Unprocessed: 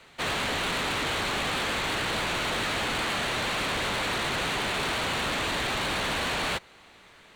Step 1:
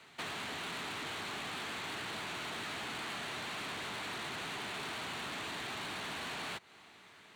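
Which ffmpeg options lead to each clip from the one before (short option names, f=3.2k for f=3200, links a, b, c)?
-af "highpass=110,equalizer=f=530:w=6.6:g=-9,acompressor=threshold=-36dB:ratio=5,volume=-4dB"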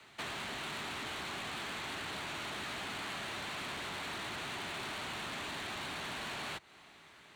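-af "afreqshift=-25"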